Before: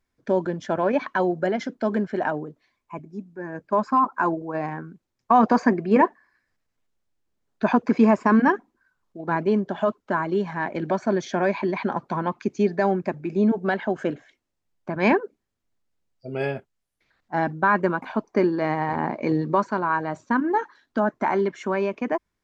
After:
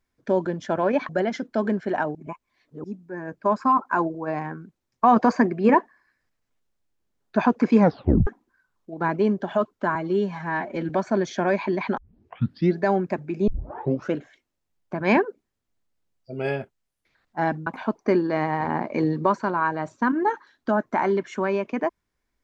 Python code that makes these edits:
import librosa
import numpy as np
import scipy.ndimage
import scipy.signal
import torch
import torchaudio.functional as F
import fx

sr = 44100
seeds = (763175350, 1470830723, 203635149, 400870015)

y = fx.edit(x, sr, fx.cut(start_s=1.09, length_s=0.27),
    fx.reverse_span(start_s=2.42, length_s=0.69),
    fx.tape_stop(start_s=8.05, length_s=0.49),
    fx.stretch_span(start_s=10.22, length_s=0.63, factor=1.5),
    fx.tape_start(start_s=11.93, length_s=0.81),
    fx.tape_start(start_s=13.43, length_s=0.65),
    fx.cut(start_s=17.62, length_s=0.33), tone=tone)